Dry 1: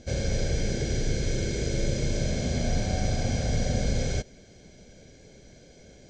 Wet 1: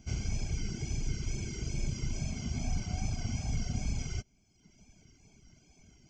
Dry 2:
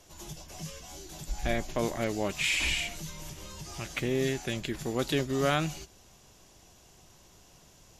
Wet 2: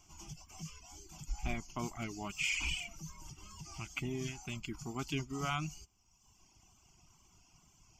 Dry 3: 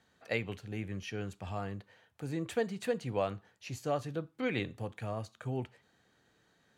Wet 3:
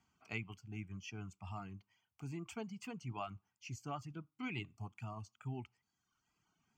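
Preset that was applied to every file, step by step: wow and flutter 58 cents; reverb removal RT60 1.1 s; fixed phaser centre 2600 Hz, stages 8; gain -3.5 dB

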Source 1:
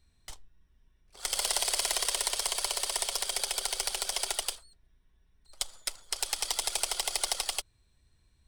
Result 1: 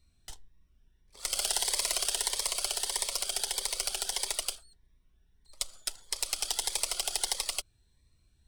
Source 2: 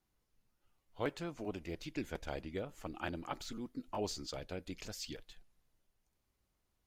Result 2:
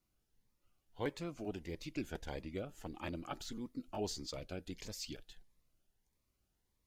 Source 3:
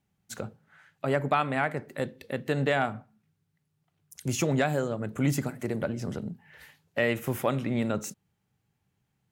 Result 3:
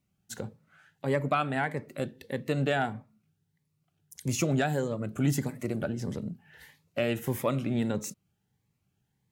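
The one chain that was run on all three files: cascading phaser rising 1.6 Hz

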